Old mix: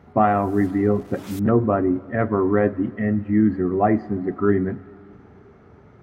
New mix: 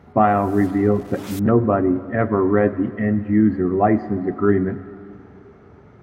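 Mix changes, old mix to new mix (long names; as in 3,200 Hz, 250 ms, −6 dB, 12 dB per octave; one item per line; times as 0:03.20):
speech: send +7.0 dB
background +4.5 dB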